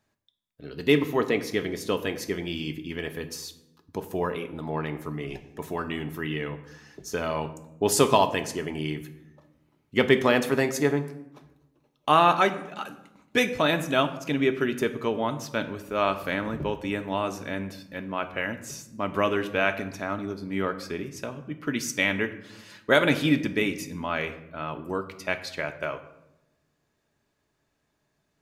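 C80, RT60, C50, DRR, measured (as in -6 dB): 15.0 dB, 0.90 s, 13.0 dB, 6.5 dB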